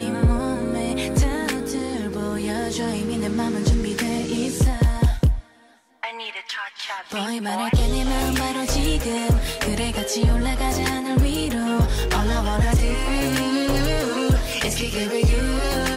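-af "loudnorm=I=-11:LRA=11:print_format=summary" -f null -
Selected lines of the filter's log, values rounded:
Input Integrated:    -22.6 LUFS
Input True Peak:     -10.2 dBTP
Input LRA:             2.6 LU
Input Threshold:     -32.7 LUFS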